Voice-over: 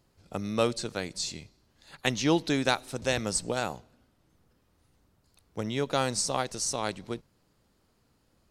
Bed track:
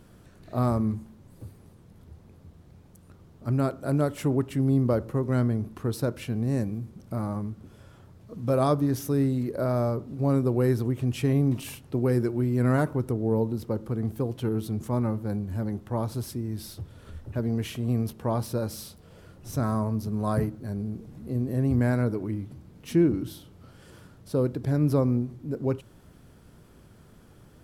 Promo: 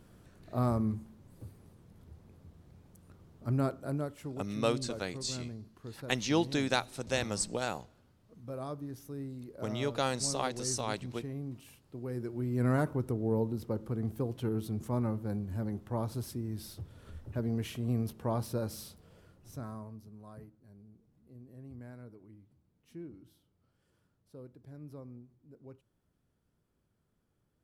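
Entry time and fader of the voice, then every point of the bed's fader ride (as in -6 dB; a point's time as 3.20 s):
4.05 s, -4.0 dB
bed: 3.69 s -5 dB
4.35 s -17 dB
11.96 s -17 dB
12.63 s -5.5 dB
18.93 s -5.5 dB
20.31 s -24.5 dB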